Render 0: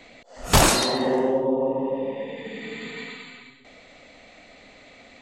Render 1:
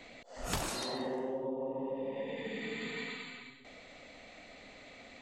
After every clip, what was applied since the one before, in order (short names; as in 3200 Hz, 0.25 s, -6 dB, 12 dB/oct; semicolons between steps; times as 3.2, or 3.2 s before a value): compressor 8:1, threshold -30 dBFS, peak gain reduction 17.5 dB; gain -4 dB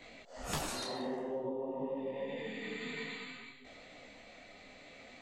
detuned doubles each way 19 cents; gain +2.5 dB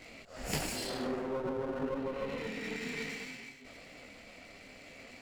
minimum comb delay 0.4 ms; gain +3.5 dB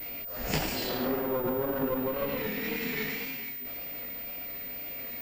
vibrato 1.9 Hz 62 cents; pulse-width modulation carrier 15000 Hz; gain +5.5 dB